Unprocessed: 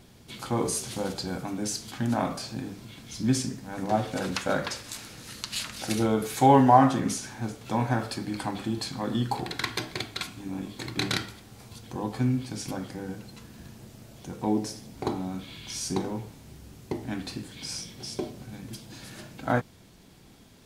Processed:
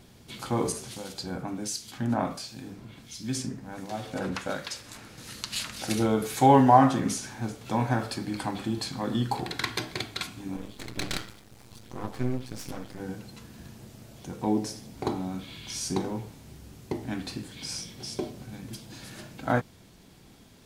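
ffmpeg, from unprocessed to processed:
ffmpeg -i in.wav -filter_complex "[0:a]asettb=1/sr,asplit=3[link_01][link_02][link_03];[link_01]atrim=end=0.724[link_04];[link_02]atrim=start=0.72:end=5.18,asetpts=PTS-STARTPTS,afade=type=in:duration=0.004:curve=qsin,afade=type=out:start_time=4.456:duration=0.004:curve=qsin,acrossover=split=2200[link_05][link_06];[link_05]aeval=exprs='val(0)*(1-0.7/2+0.7/2*cos(2*PI*1.4*n/s))':channel_layout=same[link_07];[link_06]aeval=exprs='val(0)*(1-0.7/2-0.7/2*cos(2*PI*1.4*n/s))':channel_layout=same[link_08];[link_07][link_08]amix=inputs=2:normalize=0[link_09];[link_03]atrim=start=5.176[link_10];[link_04][link_09]acrossfade=duration=0.004:curve1=hsin:curve2=qsin[link_11];[link_11][link_10]acrossfade=duration=0.004:curve1=qsin:curve2=hsin,asettb=1/sr,asplit=3[link_12][link_13][link_14];[link_12]atrim=end=10.564[link_15];[link_13]atrim=start=10.56:end=13,asetpts=PTS-STARTPTS,afade=type=in:duration=0.004:curve=qsin,afade=type=out:start_time=2.436:duration=0.004:curve=qsin,aeval=exprs='max(val(0),0)':channel_layout=same[link_16];[link_14]atrim=start=12.996[link_17];[link_15][link_16]acrossfade=duration=0.004:curve1=hsin:curve2=qsin[link_18];[link_18][link_17]acrossfade=duration=0.004:curve1=qsin:curve2=hsin" out.wav

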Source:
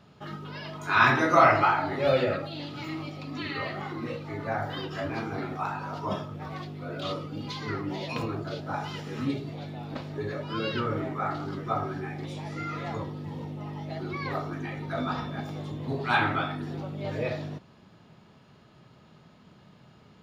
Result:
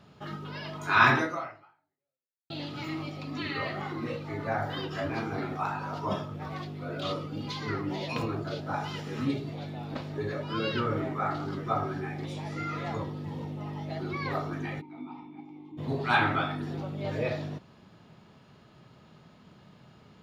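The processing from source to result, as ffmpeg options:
ffmpeg -i in.wav -filter_complex "[0:a]asplit=3[link_01][link_02][link_03];[link_01]afade=type=out:start_time=14.8:duration=0.02[link_04];[link_02]asplit=3[link_05][link_06][link_07];[link_05]bandpass=frequency=300:width_type=q:width=8,volume=0dB[link_08];[link_06]bandpass=frequency=870:width_type=q:width=8,volume=-6dB[link_09];[link_07]bandpass=frequency=2240:width_type=q:width=8,volume=-9dB[link_10];[link_08][link_09][link_10]amix=inputs=3:normalize=0,afade=type=in:start_time=14.8:duration=0.02,afade=type=out:start_time=15.77:duration=0.02[link_11];[link_03]afade=type=in:start_time=15.77:duration=0.02[link_12];[link_04][link_11][link_12]amix=inputs=3:normalize=0,asplit=2[link_13][link_14];[link_13]atrim=end=2.5,asetpts=PTS-STARTPTS,afade=type=out:start_time=1.17:duration=1.33:curve=exp[link_15];[link_14]atrim=start=2.5,asetpts=PTS-STARTPTS,afade=type=in:duration=0.004:curve=hsin[link_16];[link_15][link_16]concat=n=2:v=0:a=1" out.wav

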